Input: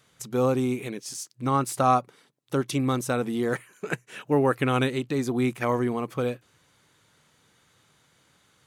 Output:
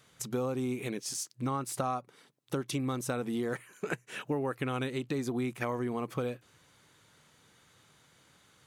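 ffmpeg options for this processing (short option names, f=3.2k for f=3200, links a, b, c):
-af "acompressor=threshold=-30dB:ratio=6"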